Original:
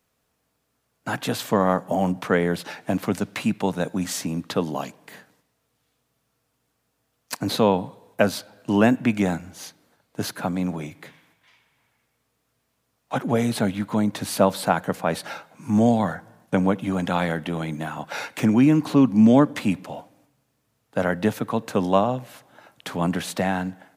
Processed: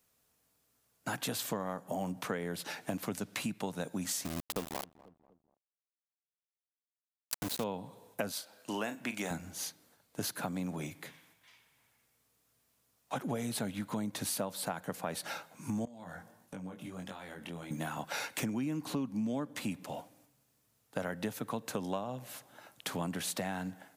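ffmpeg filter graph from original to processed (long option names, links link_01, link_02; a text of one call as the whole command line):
ffmpeg -i in.wav -filter_complex "[0:a]asettb=1/sr,asplit=3[link_01][link_02][link_03];[link_01]atrim=end=4.254[link_04];[link_02]atrim=start=4.25:end=7.64,asetpts=PTS-STARTPTS,afade=type=in:duration=0.004:curve=qsin,afade=type=out:start_time=3.386:duration=0.004:curve=qsin,aeval=exprs='val(0)*gte(abs(val(0)),0.0596)':channel_layout=same,asplit=2[link_05][link_06];[link_06]adelay=244,lowpass=frequency=1000:poles=1,volume=-23dB,asplit=2[link_07][link_08];[link_08]adelay=244,lowpass=frequency=1000:poles=1,volume=0.46,asplit=2[link_09][link_10];[link_10]adelay=244,lowpass=frequency=1000:poles=1,volume=0.46[link_11];[link_05][link_07][link_09][link_11]amix=inputs=4:normalize=0,atrim=end_sample=149499[link_12];[link_03]atrim=start=7.636[link_13];[link_04][link_12]acrossfade=duration=0.004:curve1=hsin:curve2=qsin[link_14];[link_14][link_13]acrossfade=duration=0.004:curve1=qsin:curve2=hsin,asettb=1/sr,asplit=3[link_15][link_16][link_17];[link_15]atrim=end=8.324[link_18];[link_16]atrim=start=8.32:end=9.31,asetpts=PTS-STARTPTS,afade=type=in:duration=0.004:curve=qsin,afade=type=out:start_time=0.986:duration=0.004:curve=qsin,highpass=frequency=660:poles=1,asplit=2[link_19][link_20];[link_20]adelay=38,volume=-11.5dB[link_21];[link_19][link_21]amix=inputs=2:normalize=0,atrim=end_sample=43659[link_22];[link_17]atrim=start=9.306[link_23];[link_18][link_22]acrossfade=duration=0.004:curve1=hsin:curve2=qsin[link_24];[link_24][link_23]acrossfade=duration=0.004:curve1=qsin:curve2=hsin,asettb=1/sr,asplit=3[link_25][link_26][link_27];[link_25]atrim=end=15.854[link_28];[link_26]atrim=start=15.85:end=17.71,asetpts=PTS-STARTPTS,afade=type=in:duration=0.004:curve=qsin,afade=type=out:start_time=1.856:duration=0.004:curve=qsin,acompressor=threshold=-31dB:ratio=20:attack=3.2:release=140:knee=1:detection=peak,flanger=delay=20:depth=3.5:speed=1.5[link_29];[link_27]atrim=start=17.706[link_30];[link_28][link_29]acrossfade=duration=0.004:curve1=hsin:curve2=qsin[link_31];[link_31][link_30]acrossfade=duration=0.004:curve1=qsin:curve2=hsin,highshelf=frequency=4900:gain=10.5,acompressor=threshold=-27dB:ratio=6,volume=-6dB" out.wav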